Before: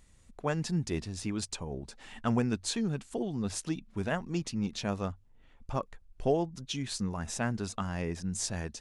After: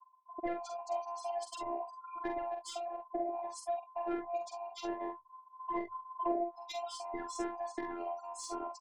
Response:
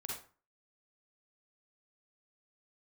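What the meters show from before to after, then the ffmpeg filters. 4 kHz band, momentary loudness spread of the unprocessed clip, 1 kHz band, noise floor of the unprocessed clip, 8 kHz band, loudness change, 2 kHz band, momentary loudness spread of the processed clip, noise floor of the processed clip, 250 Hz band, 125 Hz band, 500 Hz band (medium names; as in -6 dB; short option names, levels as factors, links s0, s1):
-10.0 dB, 8 LU, +3.0 dB, -60 dBFS, -11.5 dB, -5.5 dB, -9.5 dB, 5 LU, -61 dBFS, -10.0 dB, under -30 dB, -2.5 dB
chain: -af "afftfilt=real='real(if(between(b,1,1008),(2*floor((b-1)/48)+1)*48-b,b),0)':imag='imag(if(between(b,1,1008),(2*floor((b-1)/48)+1)*48-b,b),0)*if(between(b,1,1008),-1,1)':win_size=2048:overlap=0.75,highpass=69,afftfilt=real='re*gte(hypot(re,im),0.0141)':imag='im*gte(hypot(re,im),0.0141)':win_size=1024:overlap=0.75,bass=f=250:g=-8,treble=f=4000:g=-3,bandreject=f=50:t=h:w=6,bandreject=f=100:t=h:w=6,bandreject=f=150:t=h:w=6,acompressor=threshold=0.0141:ratio=5,asoftclip=type=tanh:threshold=0.0316,tiltshelf=f=660:g=9,aecho=1:1:46|66:0.531|0.178,afftfilt=real='hypot(re,im)*cos(PI*b)':imag='0':win_size=512:overlap=0.75,volume=2.51"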